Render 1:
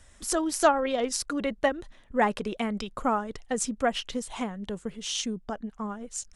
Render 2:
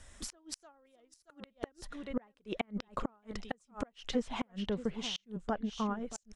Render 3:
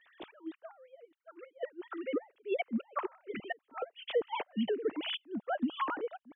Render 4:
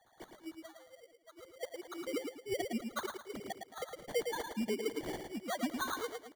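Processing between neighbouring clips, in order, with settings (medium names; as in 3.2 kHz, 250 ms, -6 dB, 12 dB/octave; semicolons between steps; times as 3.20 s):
delay 627 ms -15 dB; inverted gate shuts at -20 dBFS, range -38 dB; low-pass that closes with the level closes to 2.9 kHz, closed at -30.5 dBFS
formants replaced by sine waves; in parallel at -2 dB: peak limiter -32 dBFS, peak gain reduction 11 dB; on the sum: trim -1.5 dB
feedback delay 110 ms, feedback 32%, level -5.5 dB; sample-rate reducer 2.6 kHz, jitter 0%; trim -4 dB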